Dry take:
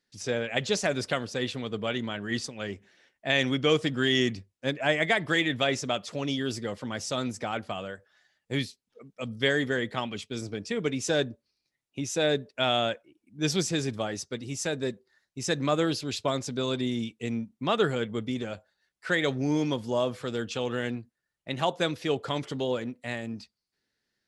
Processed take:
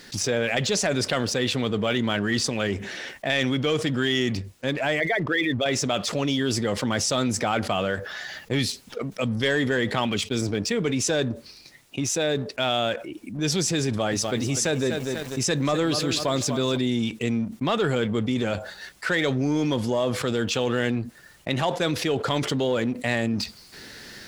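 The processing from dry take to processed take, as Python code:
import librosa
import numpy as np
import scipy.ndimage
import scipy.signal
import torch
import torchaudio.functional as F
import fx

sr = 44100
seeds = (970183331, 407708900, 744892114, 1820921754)

y = fx.envelope_sharpen(x, sr, power=2.0, at=(5.0, 5.66))
y = fx.peak_eq(y, sr, hz=8500.0, db=-11.0, octaves=0.3, at=(7.73, 8.59))
y = fx.echo_crushed(y, sr, ms=245, feedback_pct=35, bits=9, wet_db=-13.0, at=(13.87, 16.77))
y = fx.rider(y, sr, range_db=10, speed_s=2.0)
y = fx.leveller(y, sr, passes=1)
y = fx.env_flatten(y, sr, amount_pct=70)
y = F.gain(torch.from_numpy(y), -5.5).numpy()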